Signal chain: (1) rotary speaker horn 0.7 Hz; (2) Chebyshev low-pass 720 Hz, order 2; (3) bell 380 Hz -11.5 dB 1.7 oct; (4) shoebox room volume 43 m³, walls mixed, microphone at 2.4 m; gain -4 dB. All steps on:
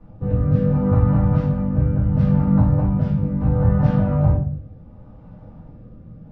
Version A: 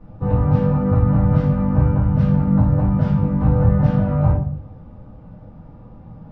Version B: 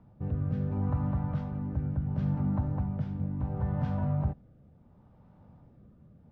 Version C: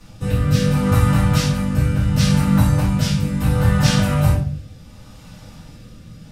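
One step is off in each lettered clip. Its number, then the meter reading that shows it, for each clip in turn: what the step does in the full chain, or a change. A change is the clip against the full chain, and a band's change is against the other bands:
1, 1 kHz band +2.0 dB; 4, echo-to-direct 12.0 dB to none; 2, 1 kHz band +4.0 dB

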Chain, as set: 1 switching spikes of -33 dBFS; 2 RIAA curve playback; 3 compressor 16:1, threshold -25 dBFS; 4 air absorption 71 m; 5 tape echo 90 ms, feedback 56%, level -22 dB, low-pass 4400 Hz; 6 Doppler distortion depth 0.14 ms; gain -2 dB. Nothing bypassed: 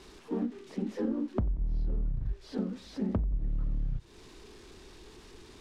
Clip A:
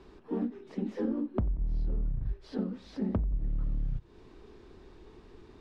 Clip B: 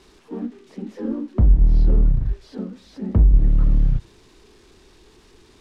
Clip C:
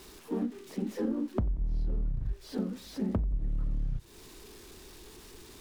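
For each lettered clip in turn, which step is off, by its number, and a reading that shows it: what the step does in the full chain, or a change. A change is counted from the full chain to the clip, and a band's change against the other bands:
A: 1, distortion -12 dB; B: 3, mean gain reduction 10.0 dB; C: 4, 4 kHz band +2.0 dB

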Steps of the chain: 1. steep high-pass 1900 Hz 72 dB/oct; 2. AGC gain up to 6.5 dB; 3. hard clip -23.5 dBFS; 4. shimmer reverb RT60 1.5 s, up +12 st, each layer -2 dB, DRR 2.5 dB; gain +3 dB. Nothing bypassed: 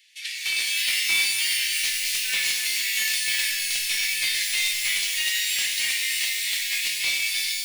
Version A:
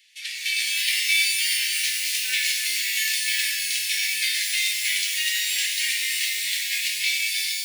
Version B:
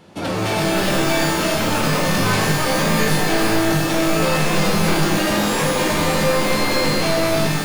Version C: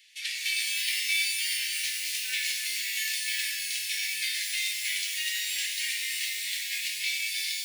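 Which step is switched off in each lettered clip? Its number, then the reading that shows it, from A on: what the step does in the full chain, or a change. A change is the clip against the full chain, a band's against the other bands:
3, distortion -18 dB; 1, 1 kHz band +31.0 dB; 2, crest factor change +2.0 dB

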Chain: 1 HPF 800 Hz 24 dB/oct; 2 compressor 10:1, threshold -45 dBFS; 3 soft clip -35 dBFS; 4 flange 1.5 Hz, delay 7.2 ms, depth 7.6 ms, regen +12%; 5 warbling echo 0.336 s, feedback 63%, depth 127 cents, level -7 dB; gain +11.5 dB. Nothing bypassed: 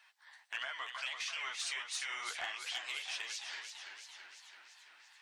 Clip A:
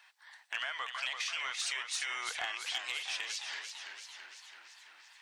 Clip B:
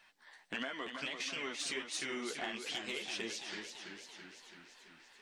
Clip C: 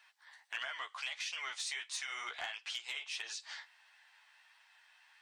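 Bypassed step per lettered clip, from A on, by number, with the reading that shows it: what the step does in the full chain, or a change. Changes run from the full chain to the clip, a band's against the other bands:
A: 4, loudness change +3.5 LU; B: 1, 500 Hz band +13.5 dB; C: 5, momentary loudness spread change -8 LU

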